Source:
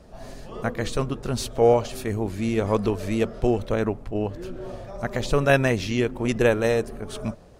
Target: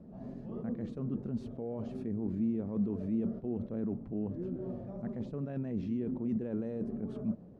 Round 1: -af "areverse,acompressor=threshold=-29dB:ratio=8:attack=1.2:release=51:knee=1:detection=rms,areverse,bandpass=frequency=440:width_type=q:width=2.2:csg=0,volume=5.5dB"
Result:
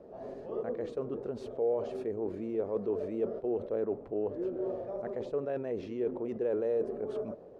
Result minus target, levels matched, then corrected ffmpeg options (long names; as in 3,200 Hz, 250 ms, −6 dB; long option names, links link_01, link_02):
500 Hz band +8.0 dB
-af "areverse,acompressor=threshold=-29dB:ratio=8:attack=1.2:release=51:knee=1:detection=rms,areverse,bandpass=frequency=210:width_type=q:width=2.2:csg=0,volume=5.5dB"